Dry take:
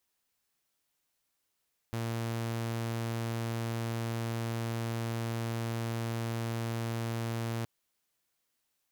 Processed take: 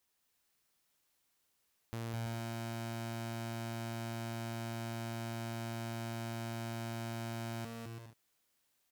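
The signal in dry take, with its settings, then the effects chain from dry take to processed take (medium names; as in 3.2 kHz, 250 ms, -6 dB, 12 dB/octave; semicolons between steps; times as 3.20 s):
tone saw 115 Hz -29.5 dBFS 5.72 s
compression 1.5:1, threshold -50 dBFS; on a send: bouncing-ball echo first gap 210 ms, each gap 0.6×, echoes 5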